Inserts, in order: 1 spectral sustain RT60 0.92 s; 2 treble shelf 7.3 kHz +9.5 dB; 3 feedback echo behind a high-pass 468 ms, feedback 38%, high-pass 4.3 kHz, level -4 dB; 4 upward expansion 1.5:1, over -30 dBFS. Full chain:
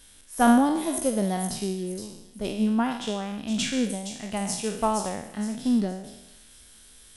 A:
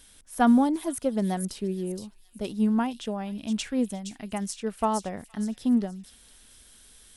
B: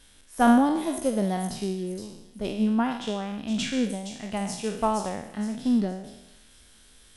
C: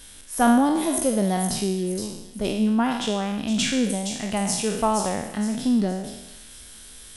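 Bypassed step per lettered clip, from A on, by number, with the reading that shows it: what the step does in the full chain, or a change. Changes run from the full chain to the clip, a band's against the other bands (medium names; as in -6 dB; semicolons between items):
1, 8 kHz band -4.0 dB; 2, 8 kHz band -6.0 dB; 4, crest factor change -2.5 dB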